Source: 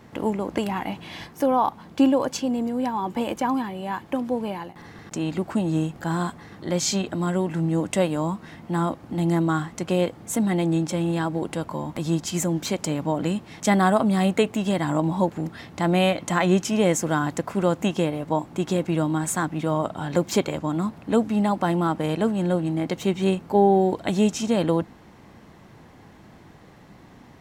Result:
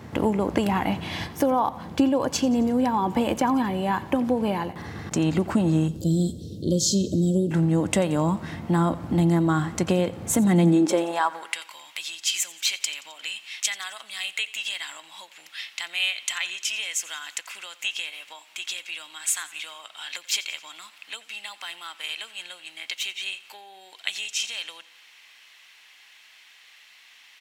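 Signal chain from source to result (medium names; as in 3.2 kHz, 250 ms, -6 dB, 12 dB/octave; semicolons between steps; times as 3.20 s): 5.88–7.51 s: inverse Chebyshev band-stop 810–2300 Hz, stop band 40 dB; compression 4:1, threshold -25 dBFS, peak gain reduction 11 dB; high-pass sweep 75 Hz -> 2.7 kHz, 10.35–11.62 s; feedback delay 88 ms, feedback 56%, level -19 dB; trim +5.5 dB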